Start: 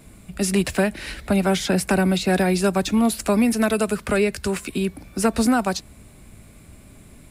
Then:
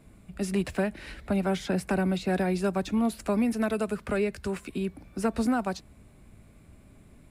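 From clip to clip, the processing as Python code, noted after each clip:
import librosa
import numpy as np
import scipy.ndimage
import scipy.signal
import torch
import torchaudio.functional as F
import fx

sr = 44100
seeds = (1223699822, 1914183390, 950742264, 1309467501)

y = fx.high_shelf(x, sr, hz=3100.0, db=-9.0)
y = F.gain(torch.from_numpy(y), -7.0).numpy()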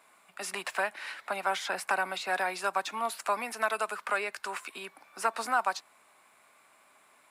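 y = fx.highpass_res(x, sr, hz=990.0, q=1.9)
y = F.gain(torch.from_numpy(y), 2.5).numpy()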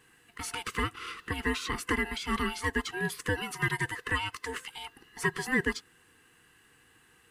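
y = fx.band_swap(x, sr, width_hz=500)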